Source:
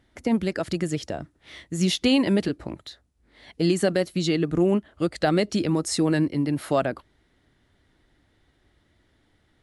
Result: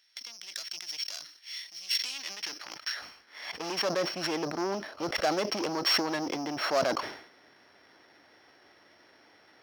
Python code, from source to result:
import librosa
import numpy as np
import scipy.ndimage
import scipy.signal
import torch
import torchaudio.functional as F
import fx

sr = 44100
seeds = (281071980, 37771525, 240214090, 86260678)

p1 = np.r_[np.sort(x[:len(x) // 8 * 8].reshape(-1, 8), axis=1).ravel(), x[len(x) // 8 * 8:]]
p2 = scipy.signal.sosfilt(scipy.signal.butter(2, 42.0, 'highpass', fs=sr, output='sos'), p1)
p3 = fx.low_shelf(p2, sr, hz=160.0, db=8.5)
p4 = fx.notch(p3, sr, hz=3700.0, q=7.3)
p5 = fx.over_compress(p4, sr, threshold_db=-28.0, ratio=-0.5)
p6 = p4 + F.gain(torch.from_numpy(p5), 2.0).numpy()
p7 = scipy.signal.savgol_filter(p6, 15, 4, mode='constant')
p8 = 10.0 ** (-17.5 / 20.0) * np.tanh(p7 / 10.0 ** (-17.5 / 20.0))
p9 = fx.filter_sweep_highpass(p8, sr, from_hz=3900.0, to_hz=590.0, start_s=1.87, end_s=4.06, q=0.77)
y = fx.sustainer(p9, sr, db_per_s=88.0)